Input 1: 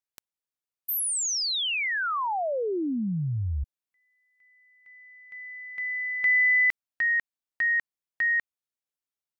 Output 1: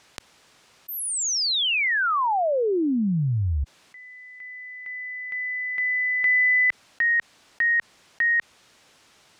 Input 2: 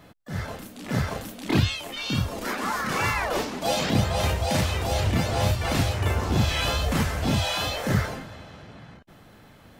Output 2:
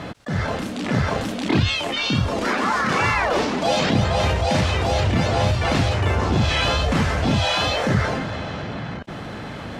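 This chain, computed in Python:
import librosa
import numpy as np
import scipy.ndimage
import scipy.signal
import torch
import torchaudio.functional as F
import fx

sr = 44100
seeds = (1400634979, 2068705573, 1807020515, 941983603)

y = fx.highpass(x, sr, hz=65.0, slope=6)
y = fx.air_absorb(y, sr, metres=81.0)
y = fx.env_flatten(y, sr, amount_pct=50)
y = F.gain(torch.from_numpy(y), 2.5).numpy()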